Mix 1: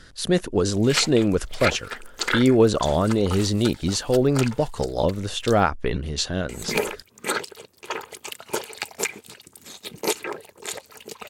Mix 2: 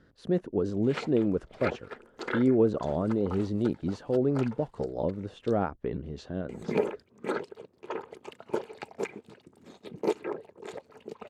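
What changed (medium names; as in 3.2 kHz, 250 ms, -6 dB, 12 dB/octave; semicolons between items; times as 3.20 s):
speech -5.5 dB; master: add band-pass filter 280 Hz, Q 0.6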